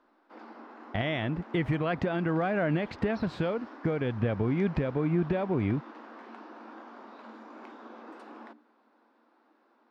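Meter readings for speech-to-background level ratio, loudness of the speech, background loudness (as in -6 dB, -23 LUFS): 17.5 dB, -30.0 LUFS, -47.5 LUFS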